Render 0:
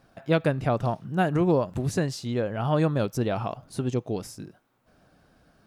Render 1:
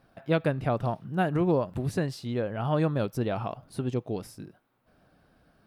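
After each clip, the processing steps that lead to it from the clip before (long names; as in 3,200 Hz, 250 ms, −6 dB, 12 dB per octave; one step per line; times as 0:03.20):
parametric band 6,700 Hz −8.5 dB 0.67 octaves
level −2.5 dB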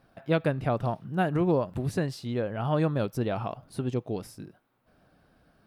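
no processing that can be heard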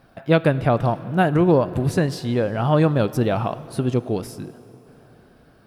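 dense smooth reverb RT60 3.7 s, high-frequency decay 0.8×, DRR 15.5 dB
level +8.5 dB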